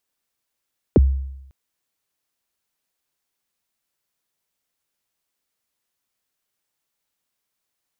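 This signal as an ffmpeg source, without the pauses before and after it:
ffmpeg -f lavfi -i "aevalsrc='0.447*pow(10,-3*t/0.86)*sin(2*PI*(540*0.027/log(67/540)*(exp(log(67/540)*min(t,0.027)/0.027)-1)+67*max(t-0.027,0)))':duration=0.55:sample_rate=44100" out.wav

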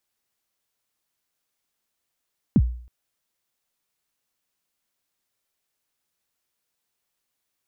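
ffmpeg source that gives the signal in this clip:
ffmpeg -f lavfi -i "aevalsrc='0.316*pow(10,-3*t/0.52)*sin(2*PI*(280*0.051/log(60/280)*(exp(log(60/280)*min(t,0.051)/0.051)-1)+60*max(t-0.051,0)))':duration=0.32:sample_rate=44100" out.wav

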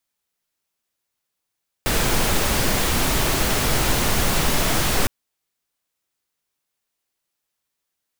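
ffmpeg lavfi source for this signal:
ffmpeg -f lavfi -i "anoisesrc=color=pink:amplitude=0.543:duration=3.21:sample_rate=44100:seed=1" out.wav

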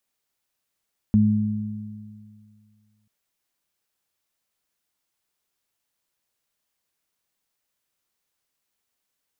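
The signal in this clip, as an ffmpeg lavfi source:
ffmpeg -f lavfi -i "aevalsrc='0.119*pow(10,-3*t/2.32)*sin(2*PI*106*t)+0.211*pow(10,-3*t/2.04)*sin(2*PI*212*t)':duration=1.94:sample_rate=44100" out.wav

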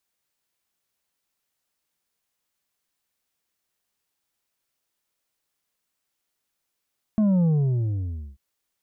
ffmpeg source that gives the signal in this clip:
ffmpeg -f lavfi -i "aevalsrc='0.133*clip((1.19-t)/0.93,0,1)*tanh(1.88*sin(2*PI*220*1.19/log(65/220)*(exp(log(65/220)*t/1.19)-1)))/tanh(1.88)':duration=1.19:sample_rate=44100" out.wav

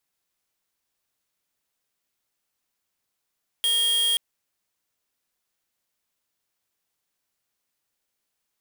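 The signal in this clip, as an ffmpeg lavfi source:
ffmpeg -f lavfi -i "aevalsrc='0.0794*(2*lt(mod(3250*t,1),0.5)-1)':duration=0.53:sample_rate=44100" out.wav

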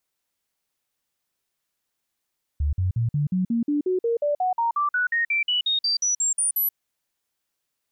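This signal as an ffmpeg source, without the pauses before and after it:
ffmpeg -f lavfi -i "aevalsrc='0.106*clip(min(mod(t,0.18),0.13-mod(t,0.18))/0.005,0,1)*sin(2*PI*73.2*pow(2,floor(t/0.18)/3)*mod(t,0.18))':duration=4.14:sample_rate=44100" out.wav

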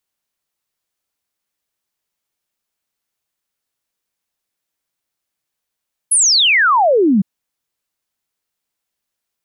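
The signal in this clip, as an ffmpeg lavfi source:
ffmpeg -f lavfi -i "aevalsrc='0.355*clip(min(t,1.11-t)/0.01,0,1)*sin(2*PI*11000*1.11/log(180/11000)*(exp(log(180/11000)*t/1.11)-1))':duration=1.11:sample_rate=44100" out.wav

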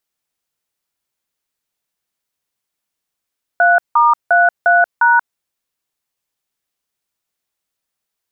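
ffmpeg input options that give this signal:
ffmpeg -f lavfi -i "aevalsrc='0.299*clip(min(mod(t,0.353),0.183-mod(t,0.353))/0.002,0,1)*(eq(floor(t/0.353),0)*(sin(2*PI*697*mod(t,0.353))+sin(2*PI*1477*mod(t,0.353)))+eq(floor(t/0.353),1)*(sin(2*PI*941*mod(t,0.353))+sin(2*PI*1209*mod(t,0.353)))+eq(floor(t/0.353),2)*(sin(2*PI*697*mod(t,0.353))+sin(2*PI*1477*mod(t,0.353)))+eq(floor(t/0.353),3)*(sin(2*PI*697*mod(t,0.353))+sin(2*PI*1477*mod(t,0.353)))+eq(floor(t/0.353),4)*(sin(2*PI*941*mod(t,0.353))+sin(2*PI*1477*mod(t,0.353))))':duration=1.765:sample_rate=44100" out.wav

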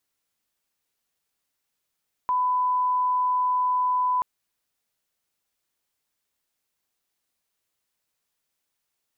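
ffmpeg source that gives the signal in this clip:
ffmpeg -f lavfi -i "sine=frequency=1000:duration=1.93:sample_rate=44100,volume=-1.94dB" out.wav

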